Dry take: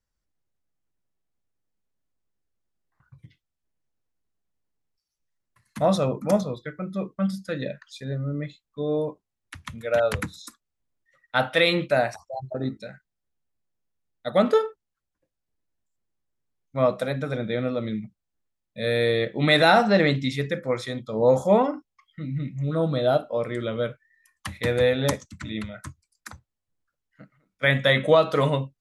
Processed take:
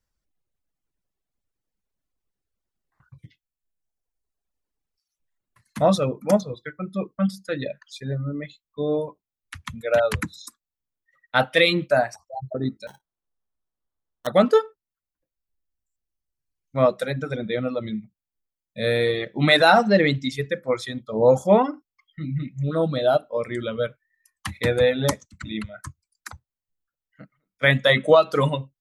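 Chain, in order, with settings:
reverb reduction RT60 2 s
0:12.87–0:14.27: sample-rate reduction 2,400 Hz, jitter 0%
level +3 dB

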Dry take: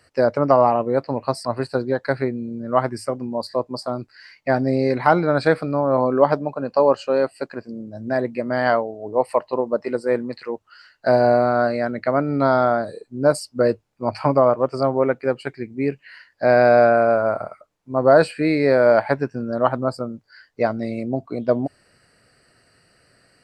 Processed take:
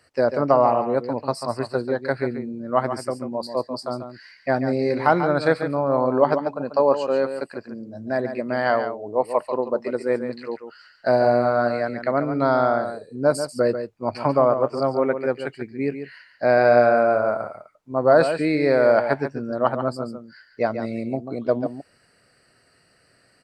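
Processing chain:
low-shelf EQ 110 Hz −5 dB
on a send: single-tap delay 141 ms −9 dB
on the sum: level −2 dB

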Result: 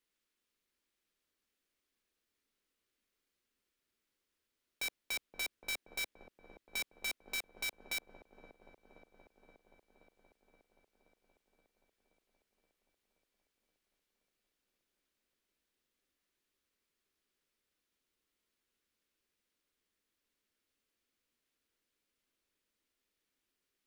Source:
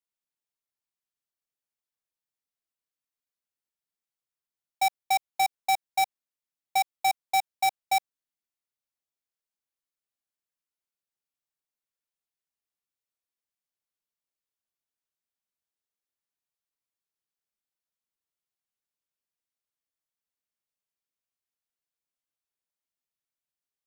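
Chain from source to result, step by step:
high-shelf EQ 7,700 Hz −7 dB
soft clipping −38.5 dBFS, distortion −13 dB
phaser with its sweep stopped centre 320 Hz, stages 4
in parallel at −6 dB: sample-rate reduction 10,000 Hz, jitter 0%
on the sum: delay with a low-pass on its return 525 ms, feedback 71%, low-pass 620 Hz, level −3 dB
level +9 dB

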